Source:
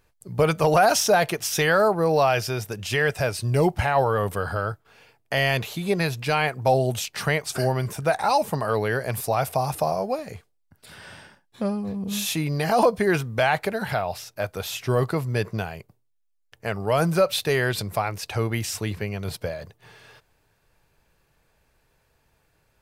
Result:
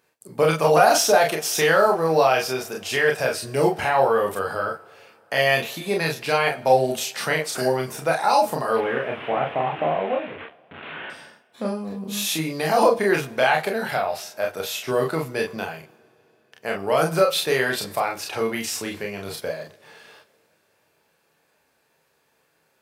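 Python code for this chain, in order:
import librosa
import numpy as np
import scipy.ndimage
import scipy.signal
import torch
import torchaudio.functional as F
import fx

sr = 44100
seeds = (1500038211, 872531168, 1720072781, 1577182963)

y = fx.delta_mod(x, sr, bps=16000, step_db=-30.0, at=(8.76, 11.1))
y = scipy.signal.sosfilt(scipy.signal.butter(2, 240.0, 'highpass', fs=sr, output='sos'), y)
y = fx.room_early_taps(y, sr, ms=(31, 44), db=(-3.5, -5.5))
y = fx.rev_double_slope(y, sr, seeds[0], early_s=0.58, late_s=4.4, knee_db=-19, drr_db=15.0)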